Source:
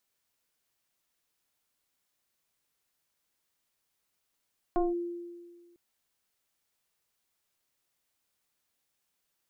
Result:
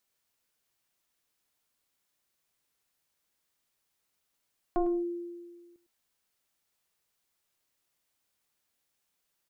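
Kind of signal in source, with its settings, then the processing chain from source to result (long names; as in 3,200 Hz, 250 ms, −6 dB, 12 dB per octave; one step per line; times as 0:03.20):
two-operator FM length 1.00 s, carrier 346 Hz, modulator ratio 1.04, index 1.3, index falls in 0.18 s linear, decay 1.63 s, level −22 dB
single-tap delay 104 ms −12.5 dB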